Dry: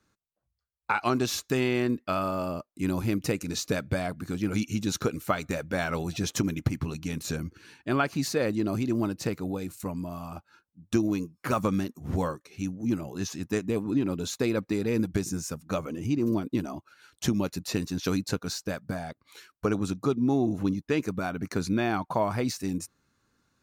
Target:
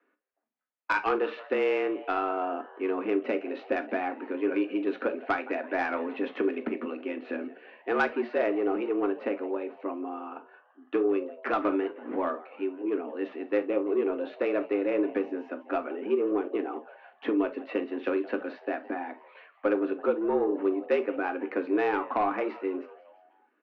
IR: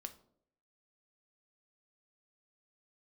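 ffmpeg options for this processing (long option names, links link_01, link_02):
-filter_complex "[0:a]highpass=frequency=180:width_type=q:width=0.5412,highpass=frequency=180:width_type=q:width=1.307,lowpass=frequency=2600:width_type=q:width=0.5176,lowpass=frequency=2600:width_type=q:width=0.7071,lowpass=frequency=2600:width_type=q:width=1.932,afreqshift=94,asplit=5[link_01][link_02][link_03][link_04][link_05];[link_02]adelay=168,afreqshift=120,volume=-20.5dB[link_06];[link_03]adelay=336,afreqshift=240,volume=-25.9dB[link_07];[link_04]adelay=504,afreqshift=360,volume=-31.2dB[link_08];[link_05]adelay=672,afreqshift=480,volume=-36.6dB[link_09];[link_01][link_06][link_07][link_08][link_09]amix=inputs=5:normalize=0,asoftclip=type=tanh:threshold=-18dB[link_10];[1:a]atrim=start_sample=2205,atrim=end_sample=3528[link_11];[link_10][link_11]afir=irnorm=-1:irlink=0,volume=6dB"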